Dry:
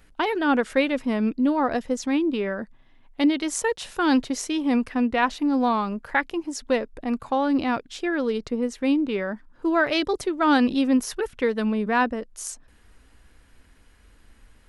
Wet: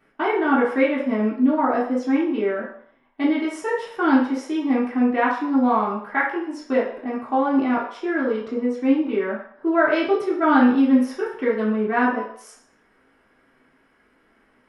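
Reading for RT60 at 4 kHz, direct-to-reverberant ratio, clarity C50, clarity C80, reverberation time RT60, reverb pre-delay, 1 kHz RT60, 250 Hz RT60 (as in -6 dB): 0.60 s, -8.5 dB, 4.0 dB, 8.5 dB, 0.60 s, 3 ms, 0.65 s, 0.45 s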